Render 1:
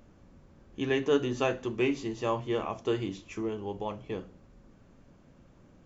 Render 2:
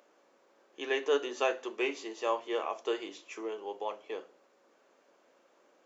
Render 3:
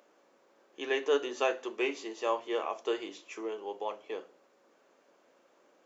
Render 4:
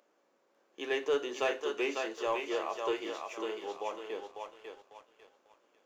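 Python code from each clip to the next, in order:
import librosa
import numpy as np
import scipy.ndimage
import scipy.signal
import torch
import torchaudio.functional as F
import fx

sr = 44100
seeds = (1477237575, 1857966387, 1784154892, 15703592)

y1 = scipy.signal.sosfilt(scipy.signal.butter(4, 410.0, 'highpass', fs=sr, output='sos'), x)
y2 = fx.low_shelf(y1, sr, hz=140.0, db=7.0)
y3 = fx.echo_thinned(y2, sr, ms=548, feedback_pct=40, hz=490.0, wet_db=-4)
y3 = fx.leveller(y3, sr, passes=1)
y3 = y3 * librosa.db_to_amplitude(-5.0)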